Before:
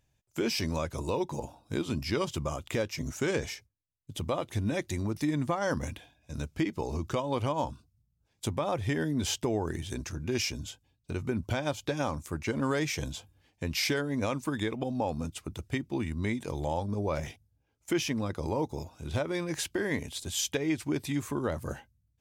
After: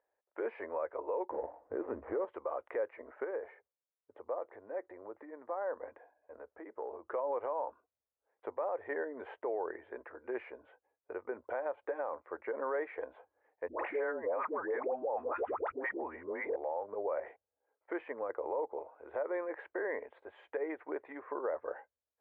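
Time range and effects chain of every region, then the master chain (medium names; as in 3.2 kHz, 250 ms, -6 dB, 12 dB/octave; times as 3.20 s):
1.30–2.25 s: dead-time distortion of 0.16 ms + tilt EQ -4.5 dB/octave
3.24–7.10 s: peaking EQ 3 kHz -7.5 dB 1.6 oct + compression 5:1, threshold -33 dBFS
13.68–16.56 s: distance through air 430 m + phase dispersion highs, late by 121 ms, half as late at 640 Hz + level flattener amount 100%
whole clip: elliptic band-pass 470–1900 Hz, stop band 50 dB; tilt EQ -4 dB/octave; peak limiter -27 dBFS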